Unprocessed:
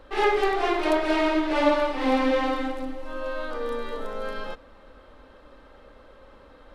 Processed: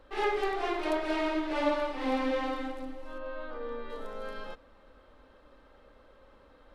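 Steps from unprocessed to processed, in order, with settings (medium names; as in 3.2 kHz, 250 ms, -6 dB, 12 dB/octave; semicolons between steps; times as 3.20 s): 3.18–3.90 s: distance through air 220 m; trim -7.5 dB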